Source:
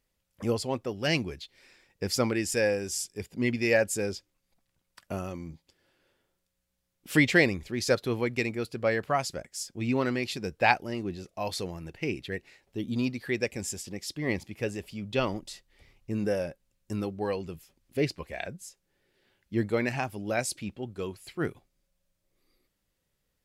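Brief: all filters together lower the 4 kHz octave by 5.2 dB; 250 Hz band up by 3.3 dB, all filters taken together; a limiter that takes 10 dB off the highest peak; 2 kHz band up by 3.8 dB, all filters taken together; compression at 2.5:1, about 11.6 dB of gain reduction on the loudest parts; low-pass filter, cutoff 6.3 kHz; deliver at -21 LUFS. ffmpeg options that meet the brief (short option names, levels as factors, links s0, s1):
-af "lowpass=6300,equalizer=f=250:t=o:g=4,equalizer=f=2000:t=o:g=6.5,equalizer=f=4000:t=o:g=-9,acompressor=threshold=0.0282:ratio=2.5,volume=6.31,alimiter=limit=0.355:level=0:latency=1"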